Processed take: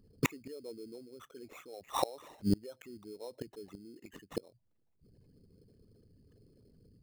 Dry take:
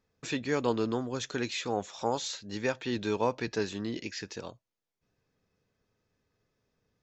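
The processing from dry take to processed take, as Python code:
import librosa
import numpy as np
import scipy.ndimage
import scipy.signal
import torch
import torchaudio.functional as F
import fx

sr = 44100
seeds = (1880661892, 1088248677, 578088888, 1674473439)

y = fx.envelope_sharpen(x, sr, power=3.0)
y = fx.gate_flip(y, sr, shuts_db=-30.0, range_db=-32)
y = fx.sample_hold(y, sr, seeds[0], rate_hz=4700.0, jitter_pct=0)
y = y * 10.0 ** (15.0 / 20.0)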